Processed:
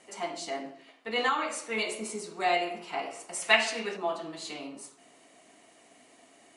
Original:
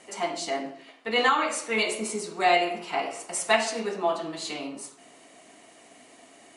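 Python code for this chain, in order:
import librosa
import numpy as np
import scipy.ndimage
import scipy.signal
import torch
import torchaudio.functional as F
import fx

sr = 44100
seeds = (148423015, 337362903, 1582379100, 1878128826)

y = fx.peak_eq(x, sr, hz=2500.0, db=10.0, octaves=1.5, at=(3.42, 3.97))
y = y * 10.0 ** (-5.5 / 20.0)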